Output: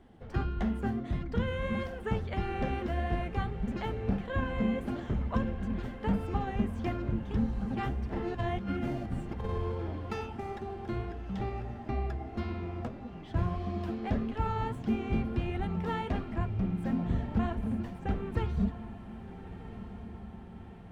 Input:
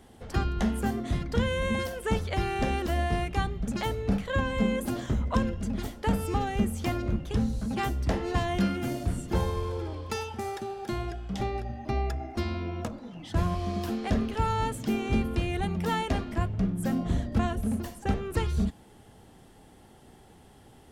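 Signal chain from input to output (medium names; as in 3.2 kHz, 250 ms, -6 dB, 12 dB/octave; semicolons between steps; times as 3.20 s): median filter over 3 samples; tone controls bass +3 dB, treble -14 dB; 7.99–10.26 s: compressor with a negative ratio -27 dBFS, ratio -0.5; flange 1.6 Hz, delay 2.6 ms, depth 6.8 ms, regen +61%; echo that smears into a reverb 1340 ms, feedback 59%, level -13 dB; trim -1 dB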